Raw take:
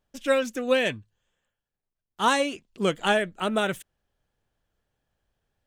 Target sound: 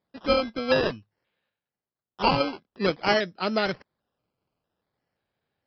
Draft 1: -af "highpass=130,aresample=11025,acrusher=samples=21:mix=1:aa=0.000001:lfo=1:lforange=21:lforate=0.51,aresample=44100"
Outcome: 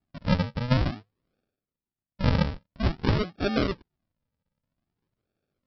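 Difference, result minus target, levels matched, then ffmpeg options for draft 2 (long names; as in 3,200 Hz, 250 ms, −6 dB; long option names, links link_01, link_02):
sample-and-hold swept by an LFO: distortion +22 dB
-af "highpass=130,aresample=11025,acrusher=samples=4:mix=1:aa=0.000001:lfo=1:lforange=4:lforate=0.51,aresample=44100"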